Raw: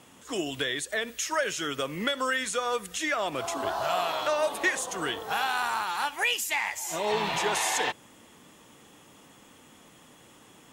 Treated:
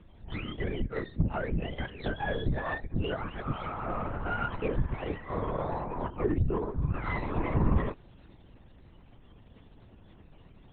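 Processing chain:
frequency axis turned over on the octave scale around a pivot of 930 Hz
harmonic generator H 8 −26 dB, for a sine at −9.5 dBFS
linear-prediction vocoder at 8 kHz whisper
level −4 dB

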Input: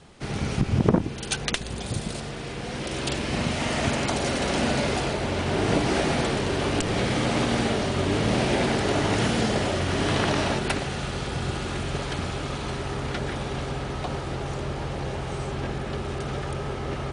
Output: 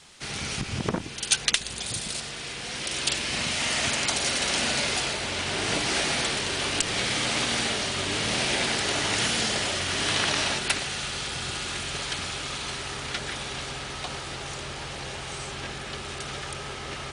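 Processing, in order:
tilt shelving filter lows −9 dB, about 1,300 Hz
noise in a band 600–8,400 Hz −58 dBFS
level −1 dB

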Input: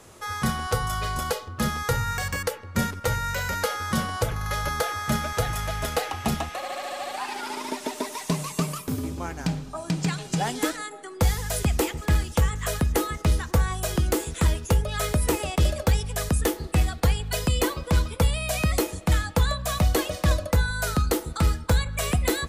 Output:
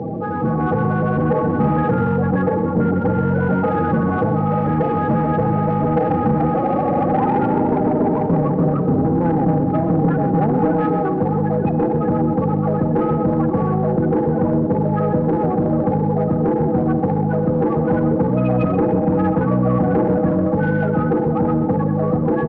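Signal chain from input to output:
compressor on every frequency bin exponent 0.2
high-shelf EQ 3,700 Hz −9.5 dB
spectral peaks only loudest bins 16
in parallel at −11 dB: asymmetric clip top −22.5 dBFS, bottom −11.5 dBFS
on the sum: elliptic low-pass filter 5,900 Hz, stop band 40 dB
automatic gain control
high-pass filter 140 Hz 24 dB per octave
soft clipping −10.5 dBFS, distortion −16 dB
slap from a distant wall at 22 metres, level −11 dB
on a send at −14 dB: convolution reverb RT60 3.1 s, pre-delay 44 ms

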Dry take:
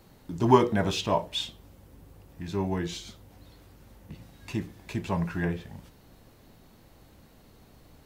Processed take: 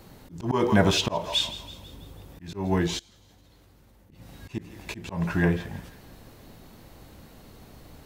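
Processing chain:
feedback echo with a high-pass in the loop 164 ms, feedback 52%, high-pass 710 Hz, level −14.5 dB
0:02.99–0:04.12: output level in coarse steps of 21 dB
volume swells 214 ms
level +6.5 dB

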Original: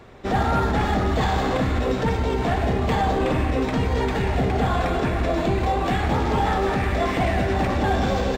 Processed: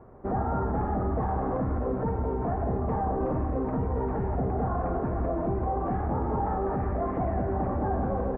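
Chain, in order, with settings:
low-pass filter 1,200 Hz 24 dB per octave
brickwall limiter −17 dBFS, peak gain reduction 4 dB
level −4 dB

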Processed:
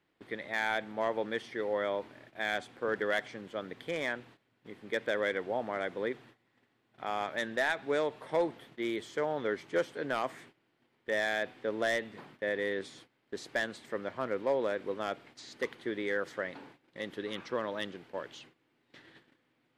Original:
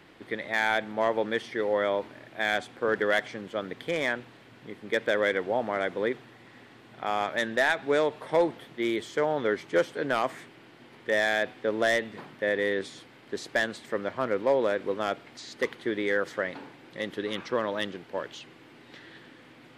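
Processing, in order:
noise gate −48 dBFS, range −16 dB
level −6 dB

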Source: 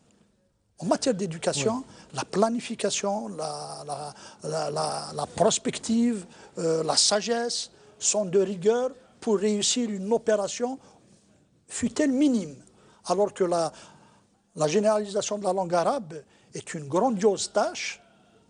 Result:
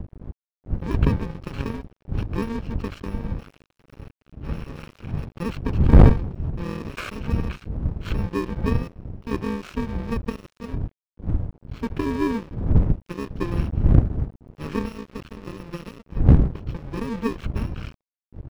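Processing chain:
samples in bit-reversed order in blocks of 64 samples
wind on the microphone 100 Hz −23 dBFS
high-shelf EQ 2,900 Hz −8.5 dB
harmonic generator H 2 −8 dB, 3 −34 dB, 5 −24 dB, 7 −33 dB, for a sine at −9 dBFS
high-frequency loss of the air 330 metres
dead-zone distortion −37 dBFS
level +3 dB

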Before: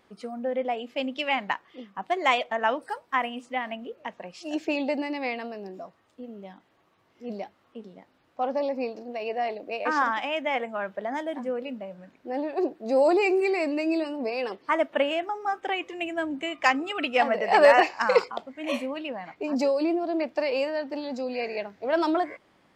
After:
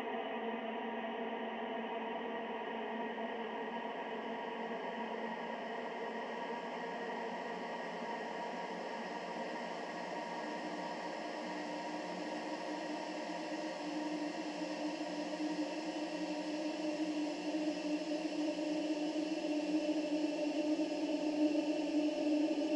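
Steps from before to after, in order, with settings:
treble cut that deepens with the level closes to 500 Hz, closed at −21.5 dBFS
extreme stretch with random phases 35×, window 1.00 s, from 0:03.88
level −3 dB

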